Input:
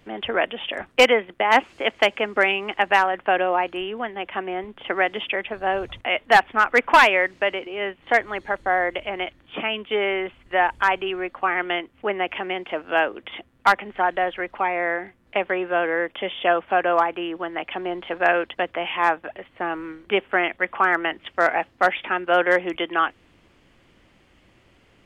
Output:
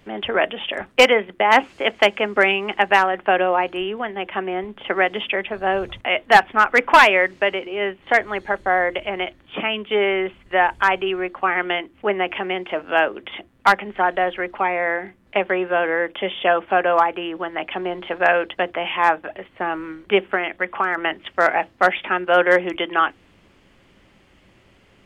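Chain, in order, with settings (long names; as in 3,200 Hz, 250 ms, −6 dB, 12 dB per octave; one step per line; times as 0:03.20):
0:20.34–0:20.98: downward compressor 3 to 1, threshold −21 dBFS, peak gain reduction 6 dB
on a send: convolution reverb RT60 0.15 s, pre-delay 3 ms, DRR 16 dB
on the sum: level +2.5 dB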